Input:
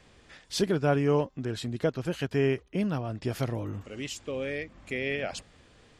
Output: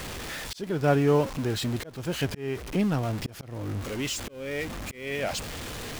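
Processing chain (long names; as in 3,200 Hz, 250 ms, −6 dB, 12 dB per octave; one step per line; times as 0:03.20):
converter with a step at zero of −33.5 dBFS
volume swells 371 ms
level +2 dB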